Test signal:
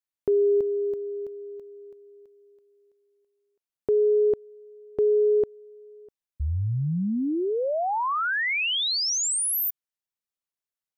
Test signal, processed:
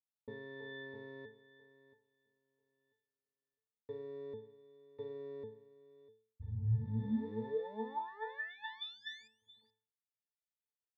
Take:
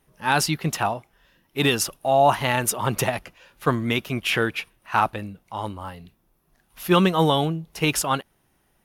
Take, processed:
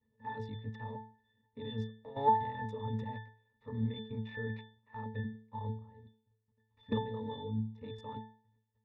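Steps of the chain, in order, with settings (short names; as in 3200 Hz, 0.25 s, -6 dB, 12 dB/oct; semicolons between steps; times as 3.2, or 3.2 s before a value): cycle switcher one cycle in 3, muted; LPF 4800 Hz 12 dB/oct; vibrato 0.69 Hz 5.7 cents; level quantiser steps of 17 dB; octave resonator A, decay 0.44 s; gain +10.5 dB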